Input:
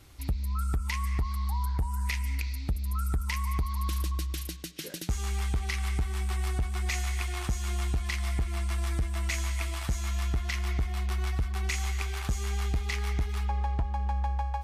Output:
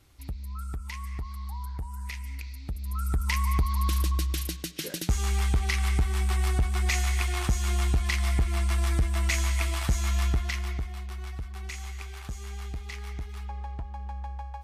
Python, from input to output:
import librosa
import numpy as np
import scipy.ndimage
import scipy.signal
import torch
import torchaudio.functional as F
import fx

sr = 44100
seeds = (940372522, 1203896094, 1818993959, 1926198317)

y = fx.gain(x, sr, db=fx.line((2.6, -6.0), (3.32, 4.5), (10.26, 4.5), (11.07, -7.0)))